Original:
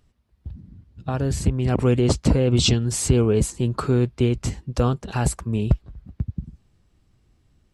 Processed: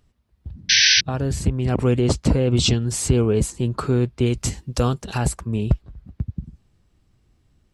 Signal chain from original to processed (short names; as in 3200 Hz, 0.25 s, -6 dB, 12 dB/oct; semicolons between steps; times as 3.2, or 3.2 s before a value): 0.69–1.01 painted sound noise 1500–6100 Hz -15 dBFS; 4.26–5.18 high shelf 3500 Hz +10 dB